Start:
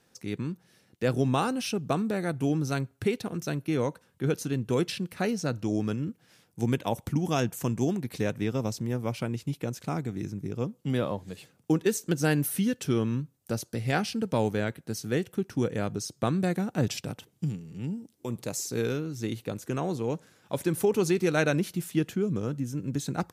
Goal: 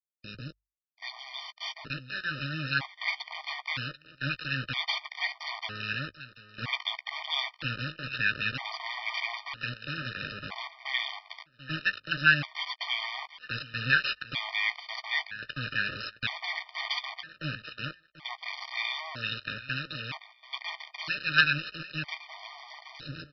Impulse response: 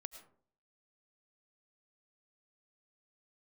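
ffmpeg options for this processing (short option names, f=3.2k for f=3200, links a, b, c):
-filter_complex "[0:a]afftfilt=real='re*(1-between(b*sr/4096,170,1500))':imag='im*(1-between(b*sr/4096,170,1500))':win_size=4096:overlap=0.75,aresample=11025,acrusher=bits=4:dc=4:mix=0:aa=0.000001,aresample=44100,highpass=f=55:p=1,asplit=2[a][b];[b]adelay=15,volume=-13.5dB[c];[a][c]amix=inputs=2:normalize=0,acrossover=split=820|3300[d][e][f];[e]dynaudnorm=f=810:g=5:m=16dB[g];[d][g][f]amix=inputs=3:normalize=0,highshelf=f=3.9k:g=8.5,bandreject=f=50:t=h:w=6,bandreject=f=100:t=h:w=6,aecho=1:1:738|1476:0.178|0.032,afftfilt=real='re*gt(sin(2*PI*0.52*pts/sr)*(1-2*mod(floor(b*sr/1024/610),2)),0)':imag='im*gt(sin(2*PI*0.52*pts/sr)*(1-2*mod(floor(b*sr/1024/610),2)),0)':win_size=1024:overlap=0.75"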